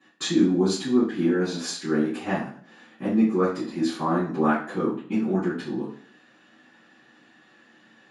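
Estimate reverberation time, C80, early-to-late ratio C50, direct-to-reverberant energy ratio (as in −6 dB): 0.50 s, 9.0 dB, 4.5 dB, −15.0 dB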